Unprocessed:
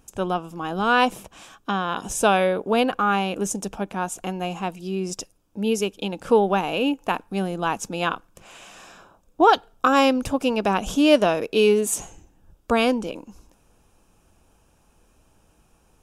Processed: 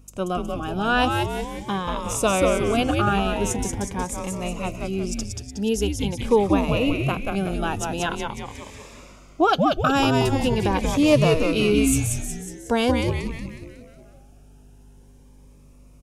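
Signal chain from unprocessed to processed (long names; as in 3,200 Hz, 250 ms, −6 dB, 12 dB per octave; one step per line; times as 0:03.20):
mains hum 50 Hz, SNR 28 dB
echo with shifted repeats 183 ms, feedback 53%, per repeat −150 Hz, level −3.5 dB
phaser whose notches keep moving one way rising 0.44 Hz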